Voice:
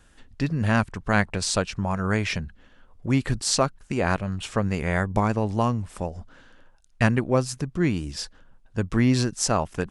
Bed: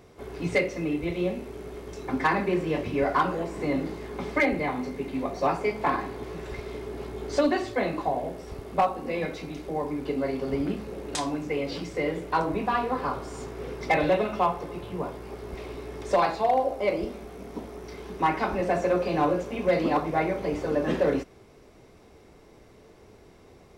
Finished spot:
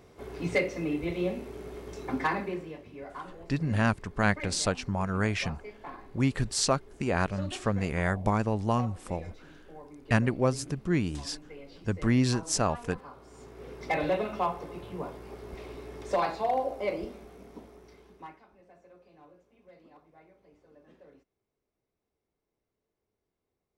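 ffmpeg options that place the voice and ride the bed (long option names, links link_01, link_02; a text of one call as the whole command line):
ffmpeg -i stem1.wav -i stem2.wav -filter_complex "[0:a]adelay=3100,volume=-4dB[link_01];[1:a]volume=10.5dB,afade=type=out:start_time=2.09:duration=0.69:silence=0.16788,afade=type=in:start_time=13.16:duration=0.9:silence=0.223872,afade=type=out:start_time=16.82:duration=1.61:silence=0.0421697[link_02];[link_01][link_02]amix=inputs=2:normalize=0" out.wav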